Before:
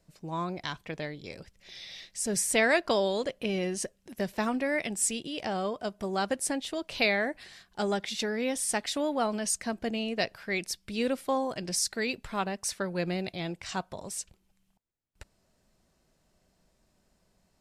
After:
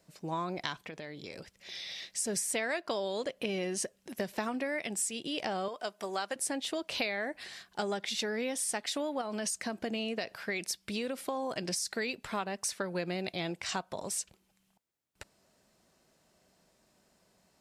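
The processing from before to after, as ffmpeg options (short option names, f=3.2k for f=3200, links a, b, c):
-filter_complex "[0:a]asettb=1/sr,asplit=3[a][b][c];[a]atrim=end=0.854[d];[b]atrim=start=0.85:end=2.04,asetpts=PTS-STARTPTS,afade=t=in:d=0.004:c=qsin,afade=t=out:st=1.186:d=0.004:c=qsin,acompressor=threshold=-41dB:ratio=12:attack=3.2:release=140:knee=1:detection=peak[e];[c]atrim=start=2.036[f];[d][e]acrossfade=d=0.004:c1=hsin:c2=qsin[g];[g][f]acrossfade=d=0.004:c1=qsin:c2=hsin,asettb=1/sr,asplit=3[h][i][j];[h]atrim=end=5.684[k];[i]atrim=start=5.68:end=6.36,asetpts=PTS-STARTPTS,afade=t=in:d=0.004:c=qsin,afade=t=out:st=0.676:d=0.004:c=qsin,highpass=f=770:p=1[l];[j]atrim=start=6.356[m];[k][l]acrossfade=d=0.004:c1=hsin:c2=qsin[n];[n][m]acrossfade=d=0.004:c1=qsin:c2=hsin,asettb=1/sr,asplit=3[o][p][q];[o]atrim=end=9.214[r];[p]atrim=start=9.21:end=11.94,asetpts=PTS-STARTPTS,afade=t=in:d=0.004:c=qsin,afade=t=out:st=2.726:d=0.004:c=qsin,acompressor=threshold=-29dB:ratio=6:attack=3.2:release=140:knee=1:detection=peak[s];[q]atrim=start=11.936[t];[r][s]acrossfade=d=0.004:c1=hsin:c2=qsin[u];[u][t]acrossfade=d=0.004:c1=qsin:c2=hsin,highpass=f=230:p=1,acompressor=threshold=-35dB:ratio=6,volume=4dB"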